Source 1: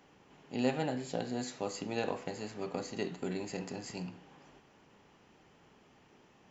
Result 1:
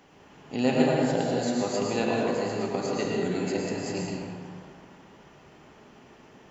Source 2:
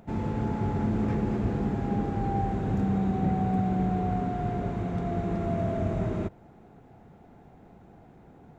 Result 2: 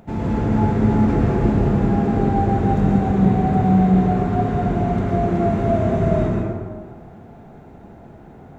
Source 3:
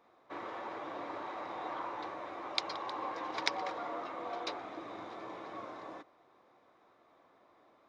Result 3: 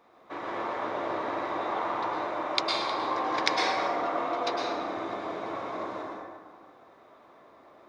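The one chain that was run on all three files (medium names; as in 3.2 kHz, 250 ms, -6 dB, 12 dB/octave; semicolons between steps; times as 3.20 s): plate-style reverb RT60 1.7 s, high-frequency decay 0.5×, pre-delay 95 ms, DRR -2.5 dB; trim +5.5 dB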